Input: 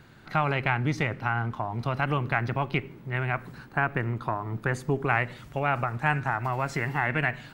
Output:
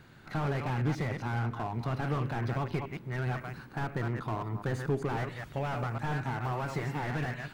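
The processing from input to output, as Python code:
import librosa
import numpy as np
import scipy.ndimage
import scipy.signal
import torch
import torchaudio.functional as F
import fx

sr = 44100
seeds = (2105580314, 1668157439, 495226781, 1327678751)

y = fx.reverse_delay(x, sr, ms=136, wet_db=-10.0)
y = fx.slew_limit(y, sr, full_power_hz=30.0)
y = y * librosa.db_to_amplitude(-2.5)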